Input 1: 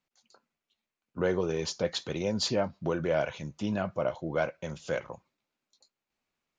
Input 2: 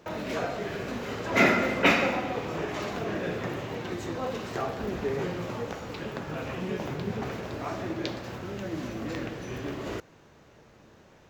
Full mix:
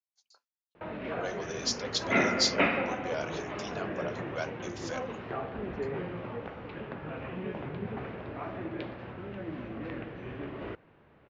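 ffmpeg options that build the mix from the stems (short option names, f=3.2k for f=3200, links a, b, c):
-filter_complex "[0:a]highpass=630,agate=range=-33dB:threshold=-60dB:ratio=3:detection=peak,equalizer=f=5.3k:t=o:w=1:g=11.5,volume=-4.5dB[a];[1:a]lowpass=f=2.9k:w=0.5412,lowpass=f=2.9k:w=1.3066,adelay=750,volume=-4.5dB[b];[a][b]amix=inputs=2:normalize=0"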